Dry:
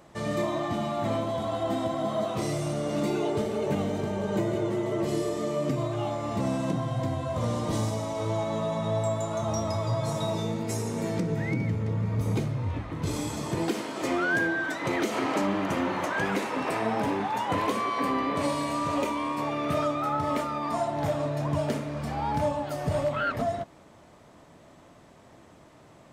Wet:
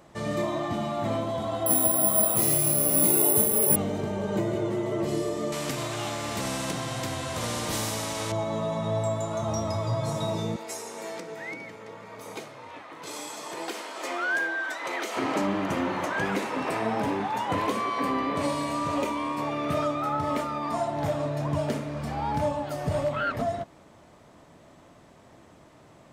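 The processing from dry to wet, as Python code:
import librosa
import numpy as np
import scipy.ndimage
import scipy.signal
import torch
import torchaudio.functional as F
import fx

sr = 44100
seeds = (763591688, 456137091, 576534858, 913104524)

y = fx.resample_bad(x, sr, factor=4, down='none', up='zero_stuff', at=(1.66, 3.76))
y = fx.spectral_comp(y, sr, ratio=2.0, at=(5.52, 8.32))
y = fx.highpass(y, sr, hz=590.0, slope=12, at=(10.56, 15.17))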